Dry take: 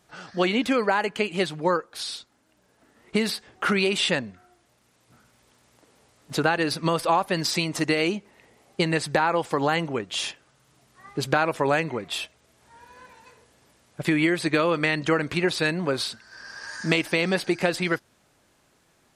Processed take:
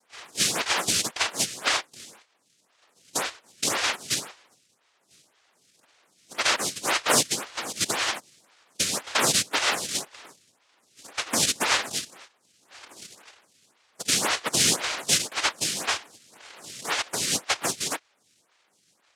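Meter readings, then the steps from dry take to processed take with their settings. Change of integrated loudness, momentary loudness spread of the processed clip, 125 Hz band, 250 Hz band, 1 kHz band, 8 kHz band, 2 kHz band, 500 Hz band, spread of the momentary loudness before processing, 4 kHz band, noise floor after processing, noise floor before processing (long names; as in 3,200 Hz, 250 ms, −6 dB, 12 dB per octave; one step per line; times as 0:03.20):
0.0 dB, 14 LU, −11.0 dB, −12.0 dB, −4.0 dB, +13.0 dB, −2.0 dB, −10.0 dB, 11 LU, +4.0 dB, −68 dBFS, −65 dBFS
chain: low-pass filter sweep 5,000 Hz → 1,100 Hz, 0:00.10–0:03.13
cochlear-implant simulation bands 1
phaser with staggered stages 1.9 Hz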